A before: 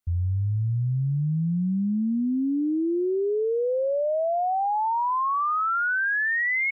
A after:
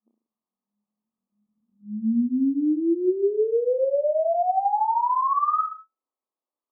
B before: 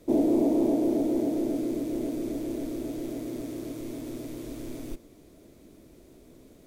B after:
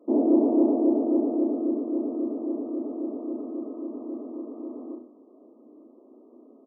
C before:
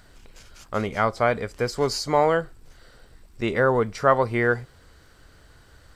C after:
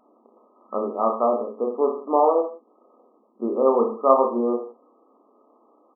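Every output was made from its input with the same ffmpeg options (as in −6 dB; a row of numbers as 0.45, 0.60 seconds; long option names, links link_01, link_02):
-af "afftfilt=real='re*between(b*sr/4096,210,1300)':imag='im*between(b*sr/4096,210,1300)':win_size=4096:overlap=0.75,aecho=1:1:30|63|99.3|139.2|183.2:0.631|0.398|0.251|0.158|0.1"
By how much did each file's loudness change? +1.5, +3.0, +1.0 LU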